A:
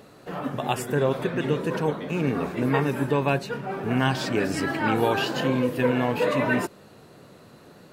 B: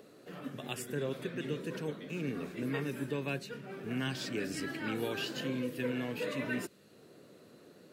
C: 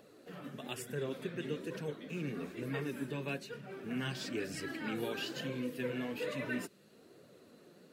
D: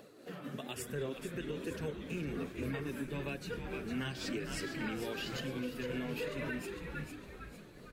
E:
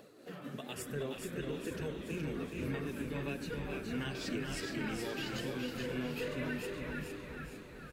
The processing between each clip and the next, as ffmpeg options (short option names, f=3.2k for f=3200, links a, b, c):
-filter_complex "[0:a]highpass=f=220:p=1,equalizer=f=870:w=1.1:g=-14.5,acrossover=split=280|1100|4700[a][b][c][d];[b]acompressor=mode=upward:threshold=-42dB:ratio=2.5[e];[a][e][c][d]amix=inputs=4:normalize=0,volume=-7dB"
-af "flanger=delay=1.1:depth=4.9:regen=-35:speed=1.1:shape=triangular,volume=1.5dB"
-filter_complex "[0:a]tremolo=f=3.7:d=0.41,asplit=6[a][b][c][d][e][f];[b]adelay=455,afreqshift=-97,volume=-8.5dB[g];[c]adelay=910,afreqshift=-194,volume=-15.4dB[h];[d]adelay=1365,afreqshift=-291,volume=-22.4dB[i];[e]adelay=1820,afreqshift=-388,volume=-29.3dB[j];[f]adelay=2275,afreqshift=-485,volume=-36.2dB[k];[a][g][h][i][j][k]amix=inputs=6:normalize=0,alimiter=level_in=9.5dB:limit=-24dB:level=0:latency=1:release=196,volume=-9.5dB,volume=4.5dB"
-af "aecho=1:1:420|840|1260|1680|2100:0.562|0.242|0.104|0.0447|0.0192,volume=-1dB"